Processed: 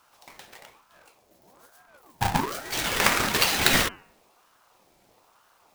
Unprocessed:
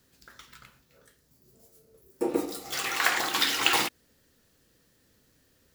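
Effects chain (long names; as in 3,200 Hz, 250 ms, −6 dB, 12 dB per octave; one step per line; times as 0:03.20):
each half-wave held at its own peak
hum removal 94.11 Hz, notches 25
ring modulator whose carrier an LFO sweeps 810 Hz, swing 45%, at 1.1 Hz
level +2.5 dB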